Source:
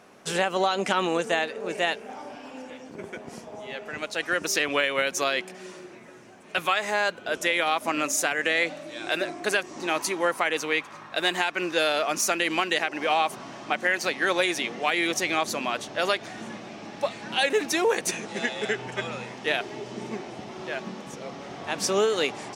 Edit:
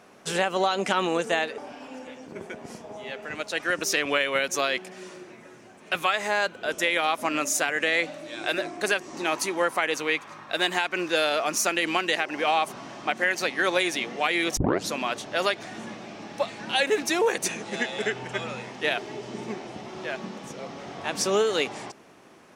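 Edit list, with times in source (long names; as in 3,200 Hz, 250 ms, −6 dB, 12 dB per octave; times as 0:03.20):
0:01.58–0:02.21: remove
0:15.20: tape start 0.33 s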